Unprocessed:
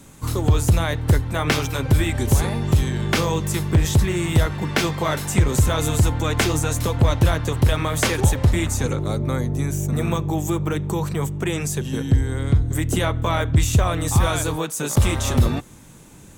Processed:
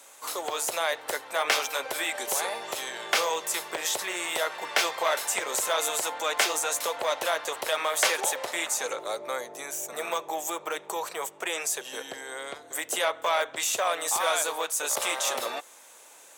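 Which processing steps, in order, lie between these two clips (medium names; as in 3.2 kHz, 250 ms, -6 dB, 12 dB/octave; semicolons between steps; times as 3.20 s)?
Chebyshev high-pass 570 Hz, order 3; transformer saturation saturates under 2.5 kHz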